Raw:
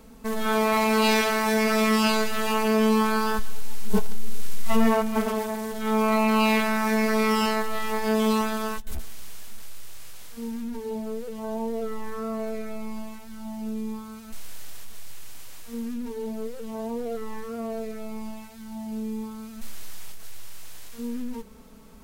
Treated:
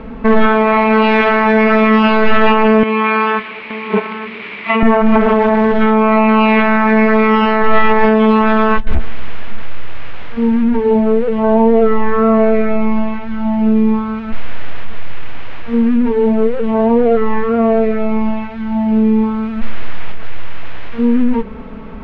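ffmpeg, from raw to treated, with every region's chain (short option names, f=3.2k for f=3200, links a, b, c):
-filter_complex "[0:a]asettb=1/sr,asplit=3[a][b][c];[a]atrim=end=2.834[d];[b]atrim=start=2.83:end=4.83,asetpts=PTS-STARTPTS,afade=t=in:d=0.004:c=qsin,afade=t=out:st=1.996:d=0.004:c=qsin,highpass=330,equalizer=f=520:t=q:w=4:g=-8,equalizer=f=780:t=q:w=4:g=-8,equalizer=f=1.5k:t=q:w=4:g=-6,equalizer=f=2.3k:t=q:w=4:g=10,lowpass=f=4.3k:w=0.5412,lowpass=f=4.3k:w=1.3066,acompressor=threshold=-28dB:ratio=6:attack=3.2:release=140:knee=1:detection=peak,aecho=1:1:873:0.237,atrim=end_sample=88200[e];[c]atrim=start=4.826[f];[d][e]acrossfade=d=0.004:c1=hsin:c2=qsin[g];[g][f]acrossfade=d=0.004:c1=qsin:c2=hsin,lowpass=f=2.6k:w=0.5412,lowpass=f=2.6k:w=1.3066,acompressor=threshold=-22dB:ratio=6,alimiter=level_in=21dB:limit=-1dB:release=50:level=0:latency=1,volume=-1dB"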